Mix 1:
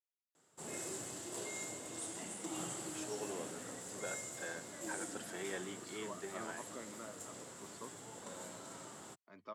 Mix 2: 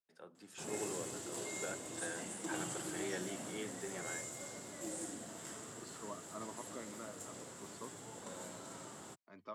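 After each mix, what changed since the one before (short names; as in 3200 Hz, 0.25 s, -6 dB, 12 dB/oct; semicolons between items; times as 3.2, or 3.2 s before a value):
first voice: entry -2.40 s; master: add low shelf 340 Hz +2.5 dB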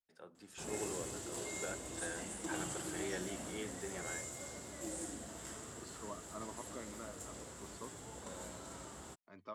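master: remove HPF 110 Hz 24 dB/oct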